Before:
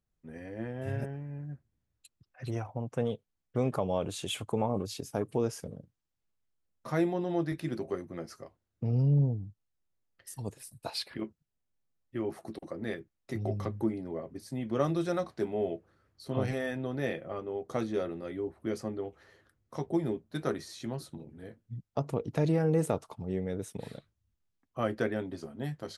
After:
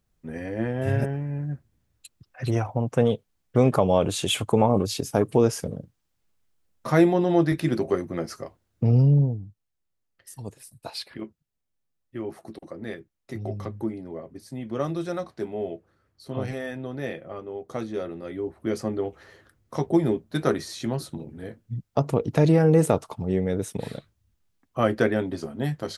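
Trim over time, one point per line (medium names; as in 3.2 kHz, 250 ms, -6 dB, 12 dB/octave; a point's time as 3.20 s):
8.90 s +10.5 dB
9.47 s +1 dB
17.93 s +1 dB
19.03 s +9 dB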